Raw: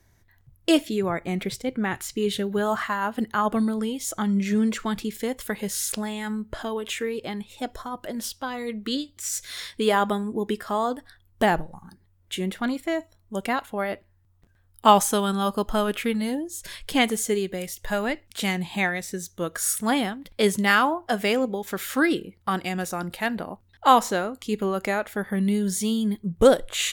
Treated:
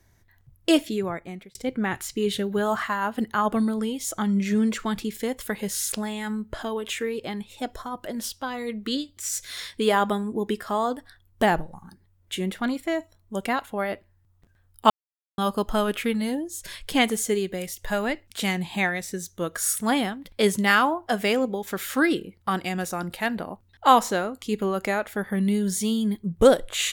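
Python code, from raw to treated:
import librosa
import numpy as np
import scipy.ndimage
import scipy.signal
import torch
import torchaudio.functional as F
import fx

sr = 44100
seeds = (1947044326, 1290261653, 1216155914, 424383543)

y = fx.edit(x, sr, fx.fade_out_span(start_s=0.86, length_s=0.69),
    fx.silence(start_s=14.9, length_s=0.48), tone=tone)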